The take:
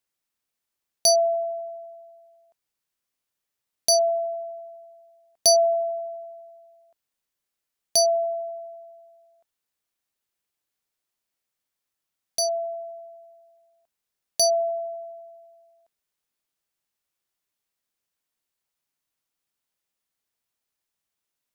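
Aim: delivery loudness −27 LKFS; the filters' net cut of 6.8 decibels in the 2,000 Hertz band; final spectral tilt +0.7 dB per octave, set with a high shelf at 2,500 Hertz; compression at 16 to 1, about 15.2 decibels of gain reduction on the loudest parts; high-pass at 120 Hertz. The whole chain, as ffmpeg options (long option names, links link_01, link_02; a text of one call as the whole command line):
ffmpeg -i in.wav -af "highpass=120,equalizer=frequency=2000:width_type=o:gain=-5.5,highshelf=frequency=2500:gain=-6,acompressor=threshold=-33dB:ratio=16,volume=10.5dB" out.wav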